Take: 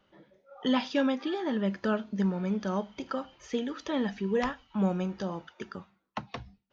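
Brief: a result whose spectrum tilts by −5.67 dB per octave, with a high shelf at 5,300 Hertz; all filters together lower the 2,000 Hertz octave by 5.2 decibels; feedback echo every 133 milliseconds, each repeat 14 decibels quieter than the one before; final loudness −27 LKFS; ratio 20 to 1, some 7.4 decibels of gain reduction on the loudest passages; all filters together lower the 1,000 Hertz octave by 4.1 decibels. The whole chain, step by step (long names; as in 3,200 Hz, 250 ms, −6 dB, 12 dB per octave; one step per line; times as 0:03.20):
parametric band 1,000 Hz −4 dB
parametric band 2,000 Hz −6 dB
high-shelf EQ 5,300 Hz +6 dB
downward compressor 20 to 1, threshold −30 dBFS
repeating echo 133 ms, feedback 20%, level −14 dB
level +10 dB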